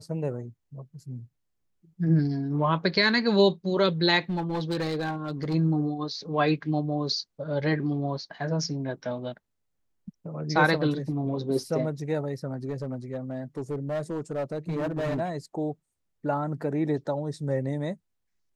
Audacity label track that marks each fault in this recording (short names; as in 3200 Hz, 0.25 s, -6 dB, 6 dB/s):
4.300000	5.550000	clipped -24.5 dBFS
12.690000	15.210000	clipped -25.5 dBFS